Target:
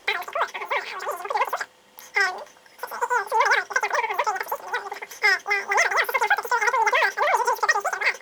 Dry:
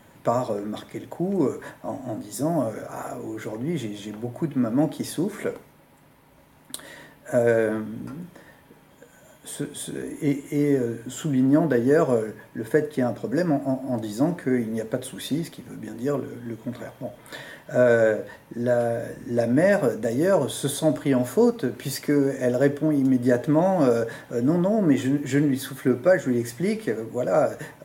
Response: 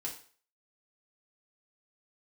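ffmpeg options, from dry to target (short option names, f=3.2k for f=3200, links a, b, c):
-af "asetrate=149499,aresample=44100"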